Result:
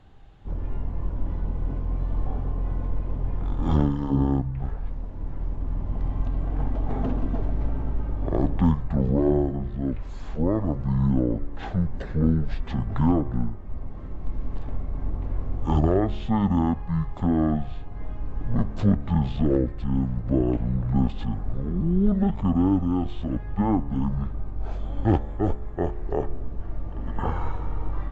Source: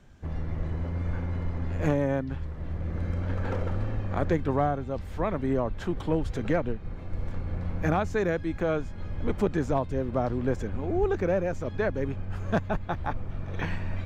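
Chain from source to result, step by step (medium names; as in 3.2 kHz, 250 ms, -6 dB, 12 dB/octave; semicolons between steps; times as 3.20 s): de-hum 142 Hz, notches 33; speed mistake 15 ips tape played at 7.5 ips; trim +4.5 dB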